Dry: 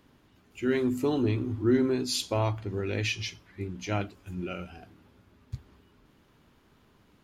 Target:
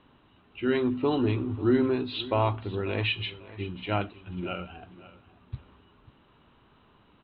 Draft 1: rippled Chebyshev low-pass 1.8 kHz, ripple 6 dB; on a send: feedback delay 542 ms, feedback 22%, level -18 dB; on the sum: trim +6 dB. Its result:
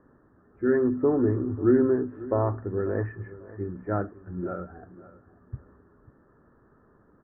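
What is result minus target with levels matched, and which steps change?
2 kHz band -8.0 dB
change: rippled Chebyshev low-pass 4 kHz, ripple 6 dB

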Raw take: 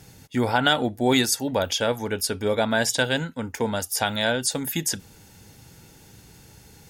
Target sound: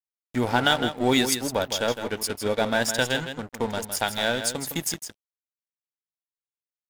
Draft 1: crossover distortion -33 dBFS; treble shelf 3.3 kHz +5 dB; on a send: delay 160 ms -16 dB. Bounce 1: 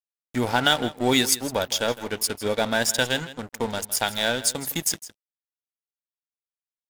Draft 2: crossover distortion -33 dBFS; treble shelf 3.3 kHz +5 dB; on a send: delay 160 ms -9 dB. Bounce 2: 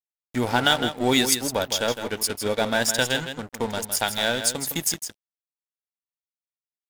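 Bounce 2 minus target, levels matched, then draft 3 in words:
8 kHz band +2.5 dB
crossover distortion -33 dBFS; on a send: delay 160 ms -9 dB

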